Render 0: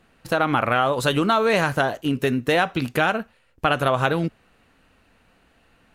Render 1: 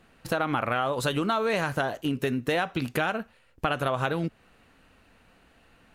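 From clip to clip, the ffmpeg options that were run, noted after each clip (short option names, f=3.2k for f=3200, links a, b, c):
-af "acompressor=threshold=-28dB:ratio=2"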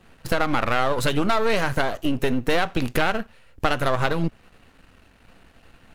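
-af "aeval=exprs='if(lt(val(0),0),0.251*val(0),val(0))':c=same,lowshelf=f=140:g=5.5,volume=7.5dB"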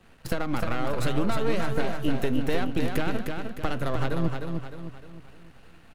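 -filter_complex "[0:a]acrossover=split=430[a][b];[b]acompressor=threshold=-34dB:ratio=2[c];[a][c]amix=inputs=2:normalize=0,aecho=1:1:306|612|918|1224|1530:0.562|0.247|0.109|0.0479|0.0211,volume=-3dB"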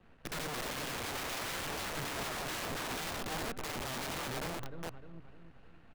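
-filter_complex "[0:a]aemphasis=mode=reproduction:type=75fm,acrossover=split=3100[a][b];[b]acompressor=threshold=-55dB:ratio=4:attack=1:release=60[c];[a][c]amix=inputs=2:normalize=0,aeval=exprs='(mod(23.7*val(0)+1,2)-1)/23.7':c=same,volume=-6.5dB"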